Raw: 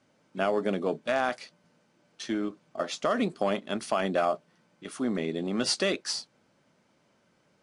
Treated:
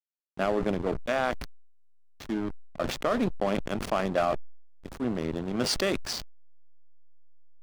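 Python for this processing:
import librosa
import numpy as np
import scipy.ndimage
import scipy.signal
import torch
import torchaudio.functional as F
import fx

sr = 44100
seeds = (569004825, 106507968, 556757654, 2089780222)

p1 = fx.level_steps(x, sr, step_db=23)
p2 = x + F.gain(torch.from_numpy(p1), 0.0).numpy()
p3 = fx.backlash(p2, sr, play_db=-25.0)
y = fx.sustainer(p3, sr, db_per_s=59.0)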